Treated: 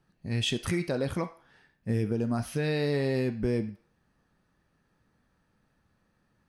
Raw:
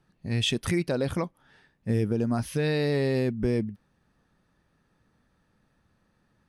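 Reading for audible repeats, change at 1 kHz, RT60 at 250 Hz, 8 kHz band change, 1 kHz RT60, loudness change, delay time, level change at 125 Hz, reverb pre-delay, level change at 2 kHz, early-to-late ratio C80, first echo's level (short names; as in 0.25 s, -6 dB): none, -2.0 dB, 0.50 s, -2.5 dB, 0.45 s, -2.5 dB, none, -2.5 dB, 7 ms, -2.0 dB, 17.5 dB, none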